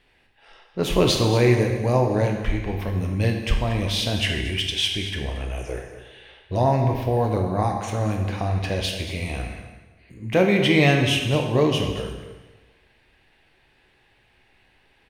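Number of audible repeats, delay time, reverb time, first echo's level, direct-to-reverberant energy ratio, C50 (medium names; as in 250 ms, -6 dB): 1, 228 ms, 1.2 s, -12.5 dB, 2.0 dB, 4.5 dB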